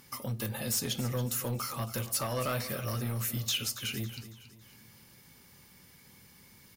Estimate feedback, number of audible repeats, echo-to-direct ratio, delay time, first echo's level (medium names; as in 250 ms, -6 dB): 42%, 3, -13.0 dB, 277 ms, -14.0 dB